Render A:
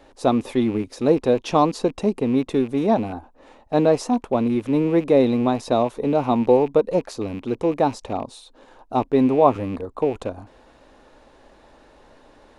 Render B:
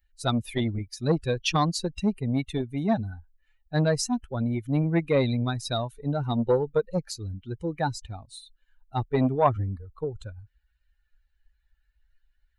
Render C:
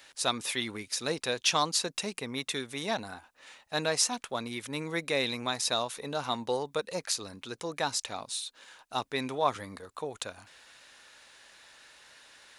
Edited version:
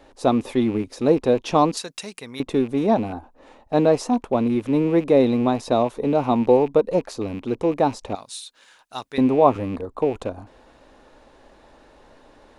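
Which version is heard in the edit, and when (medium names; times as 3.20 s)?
A
1.77–2.40 s: from C
8.15–9.18 s: from C
not used: B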